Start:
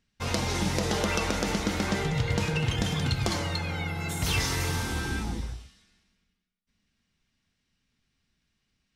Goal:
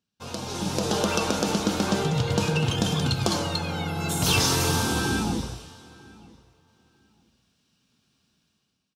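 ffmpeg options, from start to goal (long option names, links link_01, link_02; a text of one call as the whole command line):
ffmpeg -i in.wav -filter_complex "[0:a]highpass=120,equalizer=frequency=2000:width=4:gain=-15,dynaudnorm=framelen=190:gausssize=7:maxgain=15dB,asplit=2[link_01][link_02];[link_02]adelay=948,lowpass=frequency=4200:poles=1,volume=-23dB,asplit=2[link_03][link_04];[link_04]adelay=948,lowpass=frequency=4200:poles=1,volume=0.18[link_05];[link_03][link_05]amix=inputs=2:normalize=0[link_06];[link_01][link_06]amix=inputs=2:normalize=0,volume=-5.5dB" out.wav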